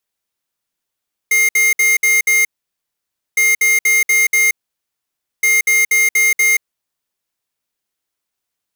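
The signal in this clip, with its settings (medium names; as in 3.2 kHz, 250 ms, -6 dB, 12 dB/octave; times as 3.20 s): beep pattern square 2.12 kHz, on 0.18 s, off 0.06 s, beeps 5, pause 0.92 s, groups 3, -12.5 dBFS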